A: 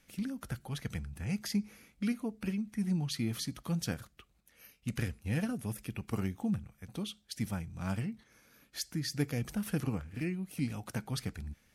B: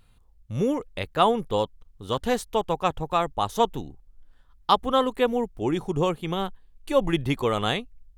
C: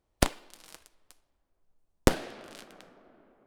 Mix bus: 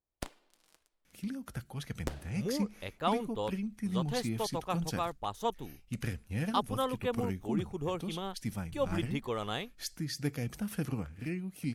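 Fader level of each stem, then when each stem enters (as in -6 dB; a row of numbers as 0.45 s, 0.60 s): -1.5 dB, -11.0 dB, -16.0 dB; 1.05 s, 1.85 s, 0.00 s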